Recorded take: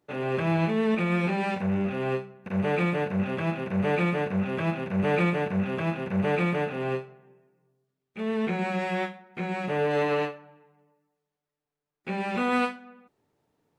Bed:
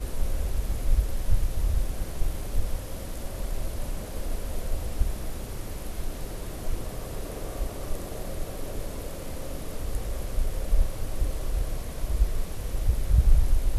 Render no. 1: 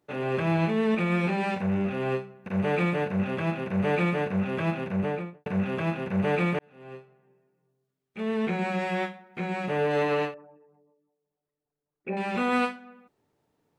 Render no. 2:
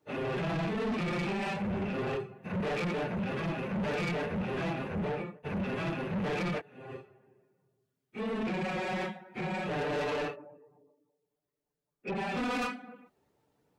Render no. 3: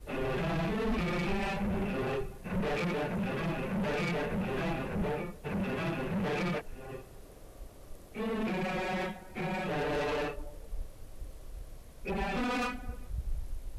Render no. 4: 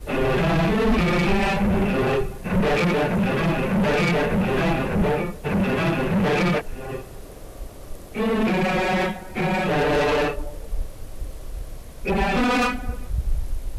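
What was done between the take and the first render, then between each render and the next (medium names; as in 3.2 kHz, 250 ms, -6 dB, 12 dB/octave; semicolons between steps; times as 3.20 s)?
4.83–5.46 s: studio fade out; 6.59–8.22 s: fade in; 10.34–12.17 s: resonances exaggerated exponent 2
phase randomisation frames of 50 ms; saturation -29.5 dBFS, distortion -8 dB
add bed -17 dB
trim +12 dB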